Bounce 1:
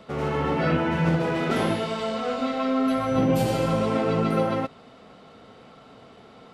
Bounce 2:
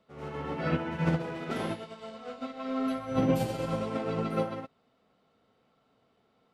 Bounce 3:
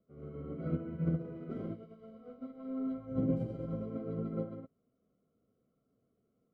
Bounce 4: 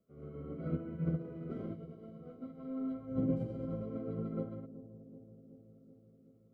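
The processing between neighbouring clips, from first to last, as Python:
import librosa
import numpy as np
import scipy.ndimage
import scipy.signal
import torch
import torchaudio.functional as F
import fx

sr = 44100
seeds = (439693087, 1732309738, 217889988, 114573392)

y1 = fx.upward_expand(x, sr, threshold_db=-31.0, expansion=2.5)
y1 = y1 * librosa.db_to_amplitude(-2.5)
y2 = np.convolve(y1, np.full(50, 1.0 / 50))[:len(y1)]
y2 = y2 * librosa.db_to_amplitude(-3.5)
y3 = fx.echo_bbd(y2, sr, ms=376, stages=2048, feedback_pct=69, wet_db=-15.0)
y3 = y3 * librosa.db_to_amplitude(-1.5)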